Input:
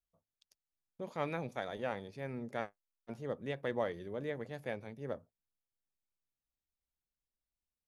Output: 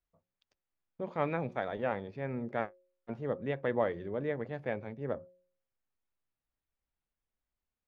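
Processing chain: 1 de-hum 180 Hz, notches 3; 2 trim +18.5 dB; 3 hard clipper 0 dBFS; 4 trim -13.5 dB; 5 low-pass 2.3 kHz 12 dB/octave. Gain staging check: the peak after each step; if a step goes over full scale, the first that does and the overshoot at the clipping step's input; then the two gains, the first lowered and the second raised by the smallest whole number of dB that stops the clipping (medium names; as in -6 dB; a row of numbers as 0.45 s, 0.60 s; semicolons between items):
-21.5 dBFS, -3.0 dBFS, -3.0 dBFS, -16.5 dBFS, -16.5 dBFS; nothing clips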